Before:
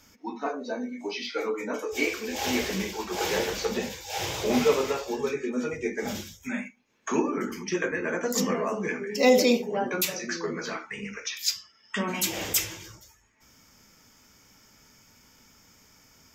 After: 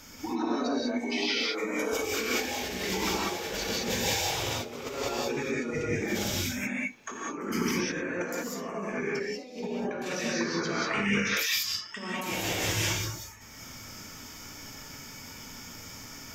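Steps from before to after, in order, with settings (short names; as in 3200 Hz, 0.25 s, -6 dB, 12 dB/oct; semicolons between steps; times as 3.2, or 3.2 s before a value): negative-ratio compressor -38 dBFS, ratio -1; 8.96–11.08 air absorption 62 m; non-linear reverb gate 0.22 s rising, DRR -4.5 dB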